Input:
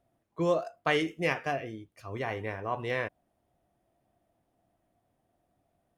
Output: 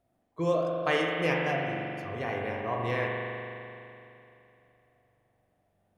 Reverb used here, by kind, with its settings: spring tank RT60 2.9 s, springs 42 ms, chirp 80 ms, DRR -1.5 dB; gain -1.5 dB

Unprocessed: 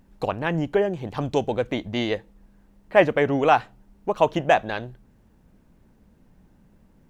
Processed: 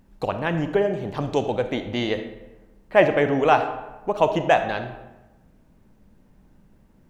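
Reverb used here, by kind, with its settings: digital reverb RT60 1.1 s, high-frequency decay 0.6×, pre-delay 5 ms, DRR 8 dB

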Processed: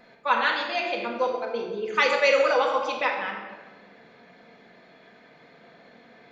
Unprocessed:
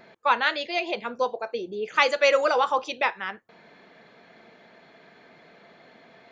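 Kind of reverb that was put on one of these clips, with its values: shoebox room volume 1200 m³, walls mixed, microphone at 1.9 m; gain -3.5 dB

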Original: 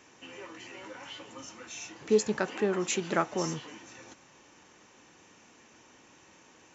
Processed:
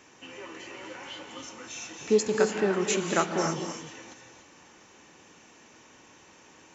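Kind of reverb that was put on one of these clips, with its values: non-linear reverb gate 0.32 s rising, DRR 4.5 dB; gain +2 dB

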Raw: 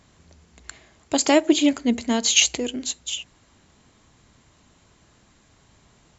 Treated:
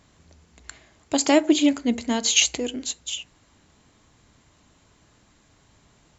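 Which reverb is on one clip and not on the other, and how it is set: FDN reverb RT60 0.45 s, low-frequency decay 0.8×, high-frequency decay 0.4×, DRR 15.5 dB; gain -1.5 dB

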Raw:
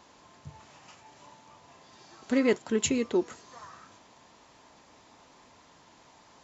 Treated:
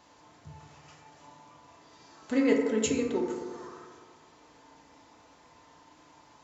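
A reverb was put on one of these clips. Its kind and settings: FDN reverb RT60 1.9 s, low-frequency decay 0.75×, high-frequency decay 0.3×, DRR 0 dB; gain -4 dB

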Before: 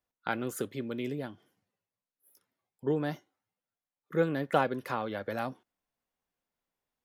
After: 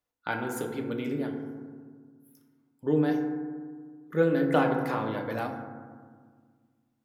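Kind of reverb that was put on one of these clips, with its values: FDN reverb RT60 1.7 s, low-frequency decay 1.4×, high-frequency decay 0.3×, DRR 2 dB

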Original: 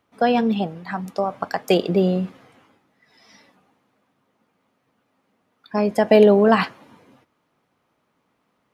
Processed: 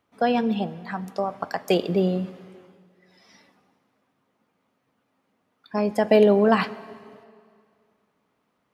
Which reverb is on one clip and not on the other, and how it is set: plate-style reverb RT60 2.3 s, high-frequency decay 0.85×, DRR 17.5 dB; gain -3.5 dB

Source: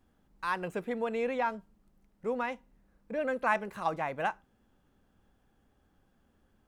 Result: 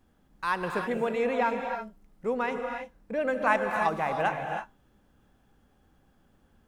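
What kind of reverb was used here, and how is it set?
non-linear reverb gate 0.35 s rising, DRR 4 dB; gain +3.5 dB

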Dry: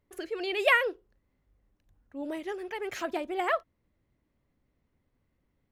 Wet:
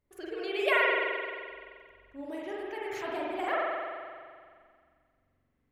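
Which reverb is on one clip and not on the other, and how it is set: spring tank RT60 2 s, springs 43 ms, chirp 75 ms, DRR -5 dB; gain -6.5 dB

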